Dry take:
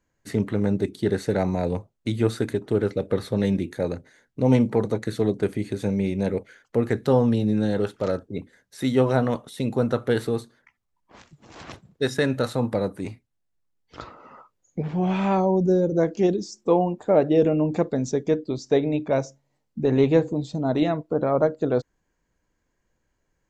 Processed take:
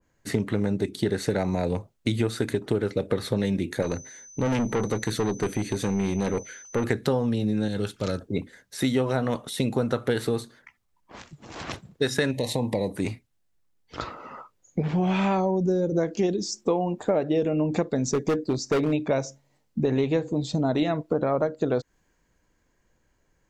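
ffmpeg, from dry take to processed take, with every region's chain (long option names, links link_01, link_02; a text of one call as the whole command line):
ffmpeg -i in.wav -filter_complex "[0:a]asettb=1/sr,asplit=3[link_01][link_02][link_03];[link_01]atrim=end=3.824[link_04];[link_02]atrim=start=3.82:end=6.84,asetpts=PTS-STARTPTS,afade=type=in:duration=0.004:curve=qsin,afade=type=out:start_time=3.016:duration=0.004:curve=qsin,aeval=exprs='(tanh(14.1*val(0)+0.35)-tanh(0.35))/14.1':channel_layout=same,aeval=exprs='val(0)+0.00251*sin(2*PI*6100*n/s)':channel_layout=same[link_05];[link_03]atrim=start=6.836[link_06];[link_04][link_05]acrossfade=duration=0.004:curve1=hsin:curve2=qsin[link_07];[link_07][link_06]acrossfade=duration=0.004:curve1=qsin:curve2=hsin,asettb=1/sr,asplit=3[link_08][link_09][link_10];[link_08]atrim=end=7.684[link_11];[link_09]atrim=start=7.68:end=8.21,asetpts=PTS-STARTPTS,afade=type=in:duration=0.004:curve=qsin,afade=type=out:start_time=0.526:duration=0.004:curve=qsin,equalizer=frequency=690:width_type=o:width=2.8:gain=-10.5,bandreject=frequency=1900:width=11[link_12];[link_10]atrim=start=8.206[link_13];[link_11][link_12]acrossfade=duration=0.004:curve1=hsin:curve2=qsin[link_14];[link_14][link_13]acrossfade=duration=0.004:curve1=qsin:curve2=hsin,asettb=1/sr,asplit=3[link_15][link_16][link_17];[link_15]atrim=end=12.314[link_18];[link_16]atrim=start=12.31:end=12.96,asetpts=PTS-STARTPTS,afade=type=in:duration=0.004:curve=qsin,afade=type=out:start_time=0.646:duration=0.004:curve=qsin,acompressor=threshold=-26dB:ratio=2:attack=3.2:release=140:knee=1:detection=peak,asuperstop=centerf=1400:order=8:qfactor=1.8[link_19];[link_17]atrim=start=12.956[link_20];[link_18][link_19]acrossfade=duration=0.004:curve1=hsin:curve2=qsin[link_21];[link_21][link_20]acrossfade=duration=0.004:curve1=qsin:curve2=hsin,asettb=1/sr,asplit=3[link_22][link_23][link_24];[link_22]atrim=end=18.064[link_25];[link_23]atrim=start=18.06:end=18.93,asetpts=PTS-STARTPTS,afade=type=in:duration=0.004:curve=qsin,afade=type=out:start_time=0.866:duration=0.004:curve=qsin,equalizer=frequency=3200:width=3.2:gain=-10.5,volume=20.5dB,asoftclip=hard,volume=-20.5dB[link_26];[link_24]atrim=start=18.926[link_27];[link_25][link_26]acrossfade=duration=0.004:curve1=hsin:curve2=qsin[link_28];[link_28][link_27]acrossfade=duration=0.004:curve1=qsin:curve2=hsin,acompressor=threshold=-26dB:ratio=6,adynamicequalizer=threshold=0.00708:dfrequency=1500:dqfactor=0.7:tfrequency=1500:tqfactor=0.7:attack=5:release=100:ratio=0.375:range=2:mode=boostabove:tftype=highshelf,volume=5dB" out.wav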